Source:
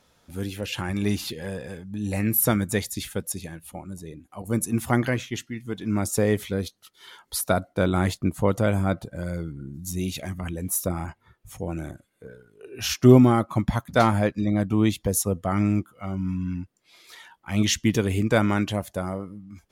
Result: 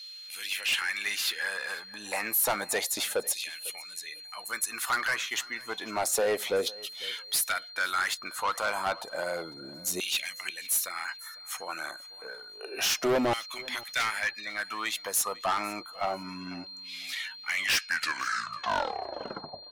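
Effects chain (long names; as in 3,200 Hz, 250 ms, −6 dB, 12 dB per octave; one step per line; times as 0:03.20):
turntable brake at the end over 2.32 s
in parallel at +3 dB: downward compressor, threshold −30 dBFS, peak gain reduction 20 dB
on the sum: steady tone 4,200 Hz −46 dBFS
auto-filter high-pass saw down 0.3 Hz 520–3,000 Hz
soft clipping −22 dBFS, distortion −7 dB
on a send: repeating echo 500 ms, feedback 18%, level −21.5 dB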